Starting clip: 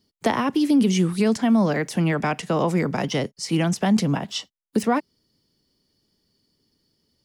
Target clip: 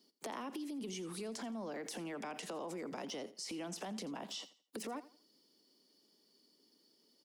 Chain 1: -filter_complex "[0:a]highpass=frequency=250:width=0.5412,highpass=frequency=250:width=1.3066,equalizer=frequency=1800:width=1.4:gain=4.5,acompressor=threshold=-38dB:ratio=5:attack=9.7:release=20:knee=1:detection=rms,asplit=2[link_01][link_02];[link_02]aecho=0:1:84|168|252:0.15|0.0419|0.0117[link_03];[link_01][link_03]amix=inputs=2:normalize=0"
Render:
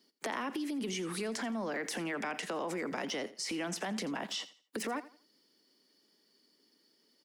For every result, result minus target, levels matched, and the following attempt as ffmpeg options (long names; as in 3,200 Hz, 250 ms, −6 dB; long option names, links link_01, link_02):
downward compressor: peak gain reduction −6 dB; 2,000 Hz band +5.0 dB
-filter_complex "[0:a]highpass=frequency=250:width=0.5412,highpass=frequency=250:width=1.3066,equalizer=frequency=1800:width=1.4:gain=4.5,acompressor=threshold=-46dB:ratio=5:attack=9.7:release=20:knee=1:detection=rms,asplit=2[link_01][link_02];[link_02]aecho=0:1:84|168|252:0.15|0.0419|0.0117[link_03];[link_01][link_03]amix=inputs=2:normalize=0"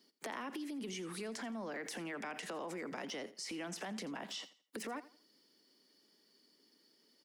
2,000 Hz band +5.0 dB
-filter_complex "[0:a]highpass=frequency=250:width=0.5412,highpass=frequency=250:width=1.3066,equalizer=frequency=1800:width=1.4:gain=-4.5,acompressor=threshold=-46dB:ratio=5:attack=9.7:release=20:knee=1:detection=rms,asplit=2[link_01][link_02];[link_02]aecho=0:1:84|168|252:0.15|0.0419|0.0117[link_03];[link_01][link_03]amix=inputs=2:normalize=0"